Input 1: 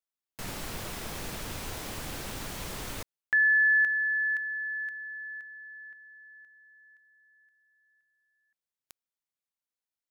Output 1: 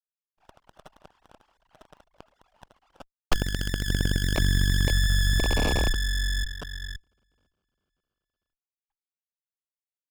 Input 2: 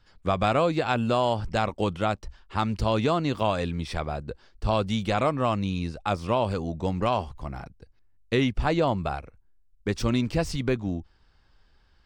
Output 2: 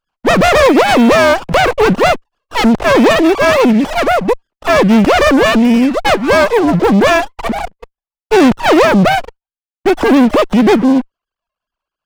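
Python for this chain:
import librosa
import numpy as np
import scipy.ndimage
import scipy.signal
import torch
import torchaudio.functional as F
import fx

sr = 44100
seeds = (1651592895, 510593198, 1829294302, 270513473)

y = fx.sine_speech(x, sr)
y = fx.leveller(y, sr, passes=5)
y = fx.running_max(y, sr, window=17)
y = F.gain(torch.from_numpy(y), 6.5).numpy()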